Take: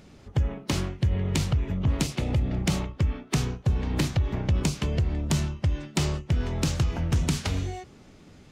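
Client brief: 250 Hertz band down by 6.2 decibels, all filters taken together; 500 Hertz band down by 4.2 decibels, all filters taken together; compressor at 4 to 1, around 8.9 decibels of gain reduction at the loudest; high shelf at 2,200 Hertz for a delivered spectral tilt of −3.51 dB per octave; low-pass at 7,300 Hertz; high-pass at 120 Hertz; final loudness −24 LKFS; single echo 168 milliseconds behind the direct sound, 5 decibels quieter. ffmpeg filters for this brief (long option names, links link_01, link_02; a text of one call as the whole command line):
ffmpeg -i in.wav -af "highpass=120,lowpass=7300,equalizer=frequency=250:width_type=o:gain=-8.5,equalizer=frequency=500:width_type=o:gain=-3,highshelf=frequency=2200:gain=8.5,acompressor=threshold=-34dB:ratio=4,aecho=1:1:168:0.562,volume=12.5dB" out.wav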